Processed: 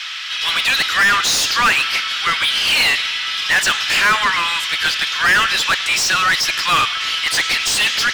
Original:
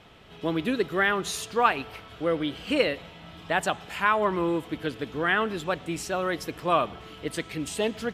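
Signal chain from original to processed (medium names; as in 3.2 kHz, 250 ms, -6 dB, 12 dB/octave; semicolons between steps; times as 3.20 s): inverse Chebyshev high-pass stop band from 430 Hz, stop band 60 dB; peaking EQ 5.3 kHz +12 dB 0.93 oct; overdrive pedal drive 31 dB, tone 3.6 kHz, clips at -11 dBFS; trim +5 dB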